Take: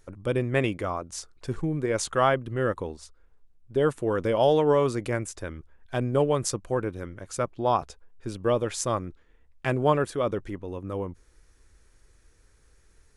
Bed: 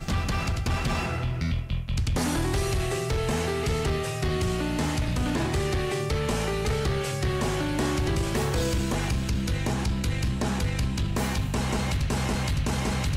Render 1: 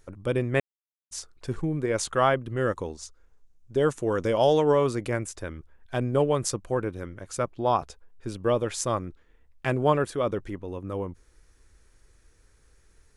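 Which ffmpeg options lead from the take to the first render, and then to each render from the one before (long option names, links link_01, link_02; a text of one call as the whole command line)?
ffmpeg -i in.wav -filter_complex "[0:a]asettb=1/sr,asplit=3[link_01][link_02][link_03];[link_01]atrim=end=2.574[link_04];[link_02]atrim=start=2.57:end=4.72,asetpts=PTS-STARTPTS,afade=type=in:duration=0.004:curve=qsin,afade=type=out:start_time=2.146:duration=0.004:curve=qsin,equalizer=frequency=6400:width_type=o:width=0.7:gain=9.5[link_05];[link_03]atrim=start=4.716[link_06];[link_04][link_05]acrossfade=duration=0.004:curve1=hsin:curve2=qsin[link_07];[link_07][link_06]acrossfade=duration=0.004:curve1=qsin:curve2=hsin,asplit=3[link_08][link_09][link_10];[link_08]atrim=end=0.6,asetpts=PTS-STARTPTS,afade=type=out:start_time=0.596:duration=0.004:curve=hsin[link_11];[link_09]atrim=start=0.6:end=1.11,asetpts=PTS-STARTPTS,volume=0[link_12];[link_10]atrim=start=1.11,asetpts=PTS-STARTPTS,afade=type=in:duration=0.004:curve=hsin[link_13];[link_11][link_12][link_13]concat=n=3:v=0:a=1" out.wav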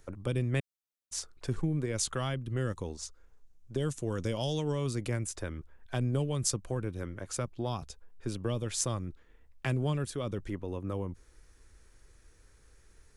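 ffmpeg -i in.wav -filter_complex "[0:a]acrossover=split=220|3000[link_01][link_02][link_03];[link_02]acompressor=threshold=-35dB:ratio=10[link_04];[link_01][link_04][link_03]amix=inputs=3:normalize=0" out.wav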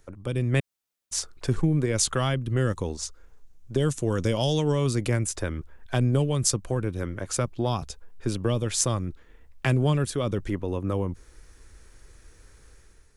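ffmpeg -i in.wav -af "dynaudnorm=framelen=120:gausssize=7:maxgain=8dB" out.wav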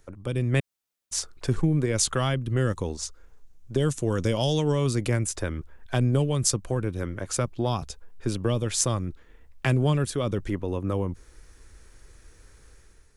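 ffmpeg -i in.wav -af anull out.wav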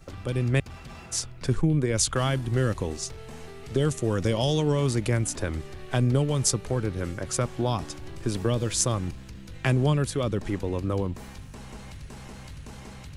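ffmpeg -i in.wav -i bed.wav -filter_complex "[1:a]volume=-16dB[link_01];[0:a][link_01]amix=inputs=2:normalize=0" out.wav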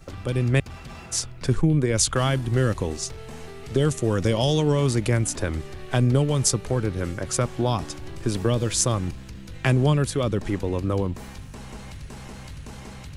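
ffmpeg -i in.wav -af "volume=3dB,alimiter=limit=-2dB:level=0:latency=1" out.wav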